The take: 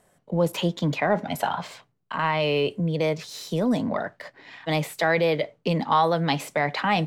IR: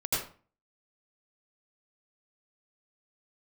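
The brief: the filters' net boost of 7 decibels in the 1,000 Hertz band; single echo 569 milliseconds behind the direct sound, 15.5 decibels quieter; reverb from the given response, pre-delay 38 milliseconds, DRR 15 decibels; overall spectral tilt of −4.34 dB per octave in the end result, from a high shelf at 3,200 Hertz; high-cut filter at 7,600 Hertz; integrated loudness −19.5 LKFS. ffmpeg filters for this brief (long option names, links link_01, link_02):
-filter_complex "[0:a]lowpass=7600,equalizer=frequency=1000:width_type=o:gain=9,highshelf=frequency=3200:gain=-3.5,aecho=1:1:569:0.168,asplit=2[link_01][link_02];[1:a]atrim=start_sample=2205,adelay=38[link_03];[link_02][link_03]afir=irnorm=-1:irlink=0,volume=-22.5dB[link_04];[link_01][link_04]amix=inputs=2:normalize=0,volume=2dB"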